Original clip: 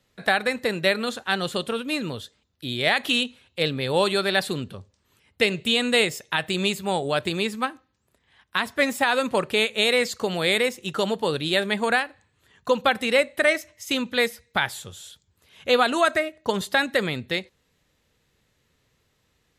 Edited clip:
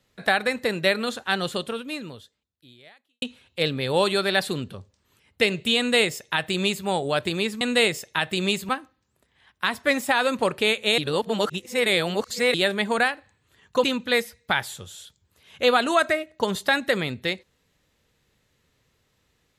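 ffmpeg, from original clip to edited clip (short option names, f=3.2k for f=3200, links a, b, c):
-filter_complex "[0:a]asplit=7[a][b][c][d][e][f][g];[a]atrim=end=3.22,asetpts=PTS-STARTPTS,afade=t=out:st=1.45:d=1.77:c=qua[h];[b]atrim=start=3.22:end=7.612,asetpts=PTS-STARTPTS,afade=t=in:d=0.004:c=hsin[i];[c]atrim=start=5.778:end=6.862[j];[d]atrim=start=7.608:end=9.902[k];[e]atrim=start=9.898:end=11.462,asetpts=PTS-STARTPTS,areverse[l];[f]atrim=start=11.458:end=12.762[m];[g]atrim=start=13.898[n];[h][i]concat=n=2:v=0:a=1[o];[o][j]acrossfade=d=0.004:c1=hsin:c2=hsin[p];[p][k]acrossfade=d=0.004:c1=hsin:c2=hsin[q];[q][l]acrossfade=d=0.004:c1=hsin:c2=hsin[r];[r][m]acrossfade=d=0.004:c1=hsin:c2=hsin[s];[s][n]acrossfade=d=0.004:c1=hsin:c2=hsin"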